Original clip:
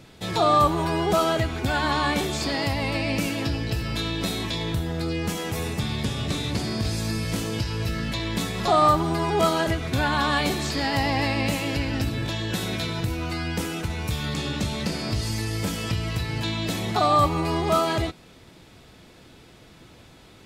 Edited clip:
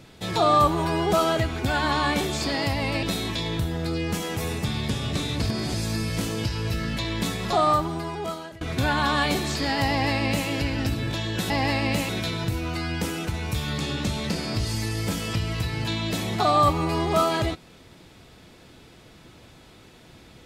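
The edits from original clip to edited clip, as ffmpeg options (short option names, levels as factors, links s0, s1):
-filter_complex "[0:a]asplit=7[s0][s1][s2][s3][s4][s5][s6];[s0]atrim=end=3.032[s7];[s1]atrim=start=4.178:end=6.572[s8];[s2]atrim=start=6.568:end=6.892,asetpts=PTS-STARTPTS,areverse[s9];[s3]atrim=start=6.888:end=9.76,asetpts=PTS-STARTPTS,afade=t=out:st=1.592:d=1.28:silence=0.0668344[s10];[s4]atrim=start=9.76:end=12.652,asetpts=PTS-STARTPTS,afade=t=in:d=0.004:c=hsin:silence=0.0668344[s11];[s5]atrim=start=11.038:end=11.632[s12];[s6]atrim=start=12.648[s13];[s7][s8]acrossfade=d=0.004:c1=hsin:c2=hsin[s14];[s14][s9]acrossfade=d=0.004:c1=hsin:c2=hsin[s15];[s10][s11]concat=n=2:v=0:a=1[s16];[s15][s16]acrossfade=d=0.004:c1=hsin:c2=hsin[s17];[s17][s12]acrossfade=d=0.004:c1=hsin:c2=hsin[s18];[s18][s13]acrossfade=d=0.004:c1=hsin:c2=hsin"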